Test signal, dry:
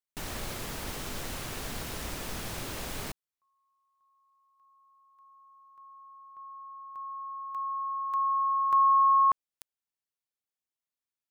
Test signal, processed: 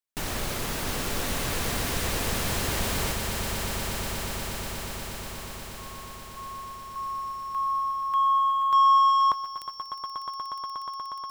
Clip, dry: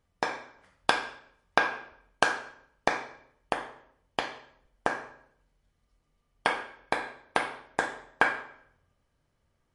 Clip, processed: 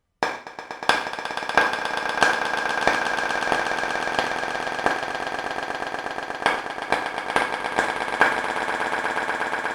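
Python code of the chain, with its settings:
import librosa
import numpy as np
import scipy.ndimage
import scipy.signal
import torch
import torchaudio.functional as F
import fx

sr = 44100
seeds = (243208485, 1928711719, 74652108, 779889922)

y = fx.leveller(x, sr, passes=1)
y = fx.echo_swell(y, sr, ms=120, loudest=8, wet_db=-10.0)
y = y * librosa.db_to_amplitude(2.5)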